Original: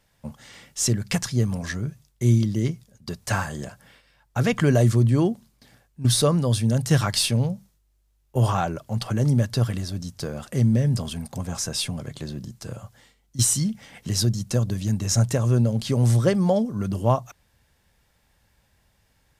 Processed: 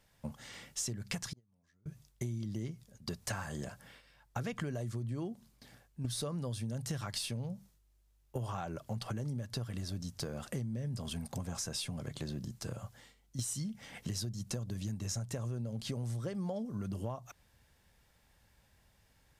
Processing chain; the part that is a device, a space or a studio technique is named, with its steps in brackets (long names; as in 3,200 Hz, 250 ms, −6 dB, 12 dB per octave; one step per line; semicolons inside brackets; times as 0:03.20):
serial compression, leveller first (downward compressor 2.5 to 1, threshold −21 dBFS, peak gain reduction 6 dB; downward compressor 6 to 1, threshold −32 dBFS, peak gain reduction 13 dB)
0:01.33–0:01.86: noise gate −28 dBFS, range −34 dB
level −3.5 dB